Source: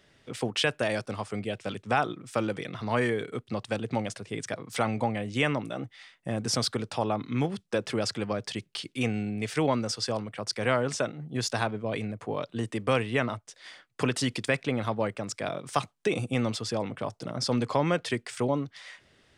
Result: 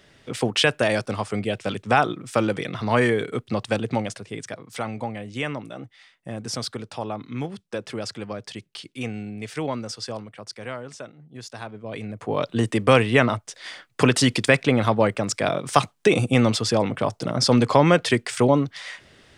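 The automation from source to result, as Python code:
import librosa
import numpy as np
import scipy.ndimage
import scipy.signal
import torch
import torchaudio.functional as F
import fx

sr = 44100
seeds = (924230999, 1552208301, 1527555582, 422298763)

y = fx.gain(x, sr, db=fx.line((3.76, 7.0), (4.66, -2.0), (10.17, -2.0), (10.83, -9.0), (11.54, -9.0), (12.07, 0.5), (12.44, 9.5)))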